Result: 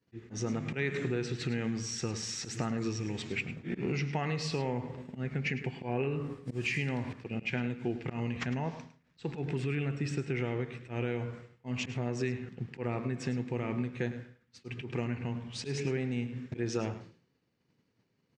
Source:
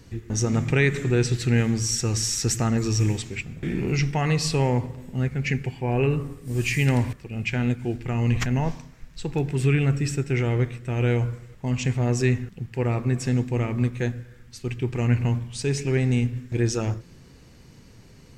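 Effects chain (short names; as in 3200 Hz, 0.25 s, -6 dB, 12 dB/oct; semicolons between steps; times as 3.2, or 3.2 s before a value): expander -34 dBFS; in parallel at -2 dB: limiter -18.5 dBFS, peak gain reduction 10 dB; on the sum: auto swell 0.153 s; compressor, threshold -23 dBFS, peak gain reduction 10 dB; BPF 150–4300 Hz; echo 0.105 s -13 dB; gain -4.5 dB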